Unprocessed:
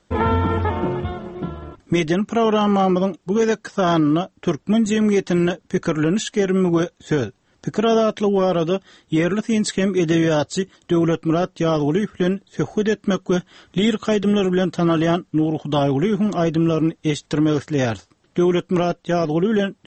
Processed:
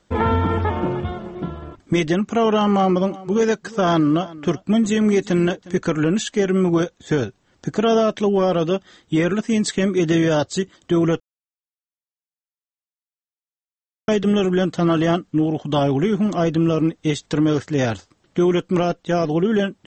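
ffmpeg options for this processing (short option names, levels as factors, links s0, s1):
-filter_complex "[0:a]asettb=1/sr,asplit=3[s0][s1][s2];[s0]atrim=end=2.714[s3];[s1]atrim=start=2.71:end=5.79,asetpts=PTS-STARTPTS,afade=t=in:d=0.004:c=qsin,afade=t=out:st=3.076:d=0.004:c=qsin,aecho=1:1:358:0.106,atrim=end_sample=135828[s4];[s2]atrim=start=5.786[s5];[s3][s4]acrossfade=d=0.004:c1=hsin:c2=qsin[s6];[s6][s5]acrossfade=d=0.004:c1=qsin:c2=hsin,asplit=3[s7][s8][s9];[s7]atrim=end=11.2,asetpts=PTS-STARTPTS,afade=t=out:st=11.196:d=0.004:c=hsin[s10];[s8]atrim=start=11.2:end=14.08,asetpts=PTS-STARTPTS,volume=0[s11];[s9]atrim=start=14.08,asetpts=PTS-STARTPTS,afade=t=in:d=0.004:c=hsin[s12];[s10][s11][s12]concat=n=3:v=0:a=1"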